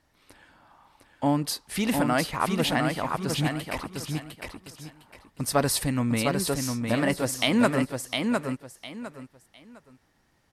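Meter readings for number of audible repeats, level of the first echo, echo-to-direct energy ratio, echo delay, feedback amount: 3, −4.5 dB, −4.0 dB, 706 ms, 25%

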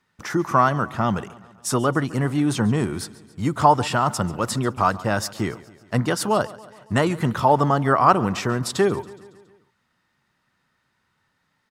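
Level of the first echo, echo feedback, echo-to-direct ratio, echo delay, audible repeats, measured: −19.5 dB, 58%, −17.5 dB, 139 ms, 4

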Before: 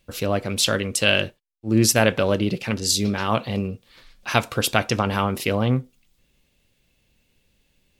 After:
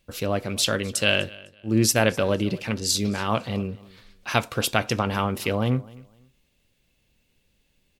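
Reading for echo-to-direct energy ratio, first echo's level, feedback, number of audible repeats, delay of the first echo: −22.0 dB, −22.0 dB, 24%, 2, 253 ms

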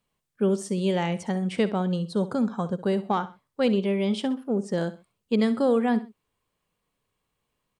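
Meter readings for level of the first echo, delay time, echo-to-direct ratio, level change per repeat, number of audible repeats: −15.0 dB, 65 ms, −14.5 dB, −10.0 dB, 2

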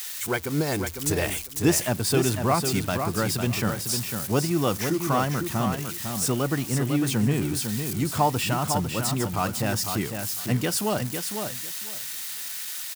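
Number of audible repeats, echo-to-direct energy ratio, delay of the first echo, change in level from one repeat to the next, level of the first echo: 2, −6.5 dB, 502 ms, −15.0 dB, −6.5 dB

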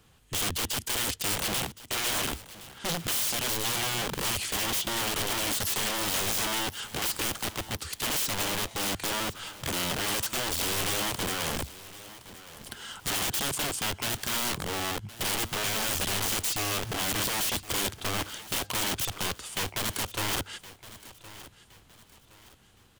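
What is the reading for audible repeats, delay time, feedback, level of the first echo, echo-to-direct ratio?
2, 1,067 ms, 35%, −17.0 dB, −16.5 dB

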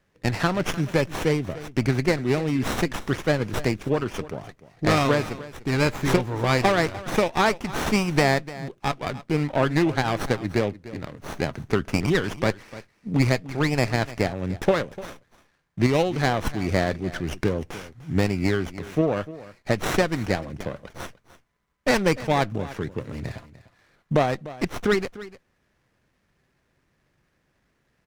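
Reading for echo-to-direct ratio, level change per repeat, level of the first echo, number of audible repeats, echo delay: −17.0 dB, repeats not evenly spaced, −17.0 dB, 1, 298 ms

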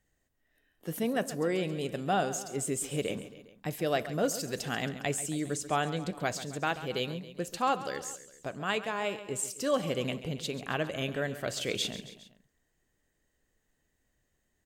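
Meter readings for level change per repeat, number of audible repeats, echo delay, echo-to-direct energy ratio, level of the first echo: −4.5 dB, 3, 136 ms, −12.5 dB, −14.0 dB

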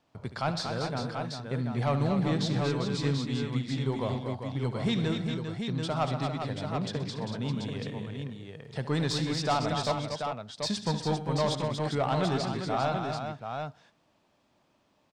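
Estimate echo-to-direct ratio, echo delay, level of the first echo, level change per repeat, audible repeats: −1.5 dB, 71 ms, −13.0 dB, repeats not evenly spaced, 6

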